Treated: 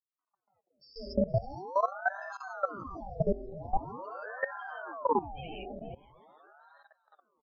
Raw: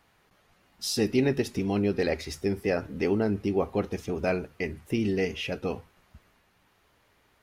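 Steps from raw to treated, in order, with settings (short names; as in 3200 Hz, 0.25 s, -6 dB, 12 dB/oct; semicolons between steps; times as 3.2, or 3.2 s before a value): dynamic EQ 700 Hz, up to +5 dB, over -45 dBFS, Q 4.9; loudest bins only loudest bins 1; in parallel at -1.5 dB: compressor 12:1, threshold -42 dBFS, peak gain reduction 15.5 dB; on the sum: low shelf 280 Hz +9.5 dB; comb 5.2 ms, depth 91%; reverb removal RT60 0.65 s; notches 50/100/150/200/250/300/350/400/450/500 Hz; non-linear reverb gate 0.2 s rising, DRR -6 dB; expander -52 dBFS; on a send: swung echo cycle 0.779 s, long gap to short 1.5:1, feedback 34%, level -17 dB; on the sum: level quantiser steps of 17 dB; ring modulator with a swept carrier 690 Hz, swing 75%, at 0.44 Hz; gain -4.5 dB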